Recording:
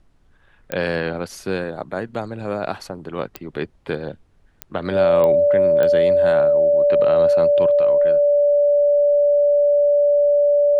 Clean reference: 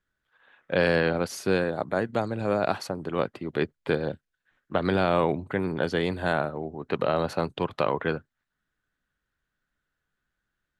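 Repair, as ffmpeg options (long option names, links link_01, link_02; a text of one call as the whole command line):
ffmpeg -i in.wav -af "adeclick=threshold=4,bandreject=frequency=580:width=30,agate=range=-21dB:threshold=-45dB,asetnsamples=nb_out_samples=441:pad=0,asendcmd='7.71 volume volume 8dB',volume=0dB" out.wav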